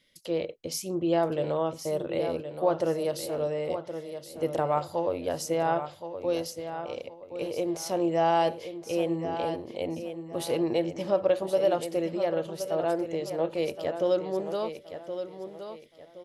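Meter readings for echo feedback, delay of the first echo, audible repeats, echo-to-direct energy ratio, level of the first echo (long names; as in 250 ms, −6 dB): 31%, 1,071 ms, 3, −9.0 dB, −9.5 dB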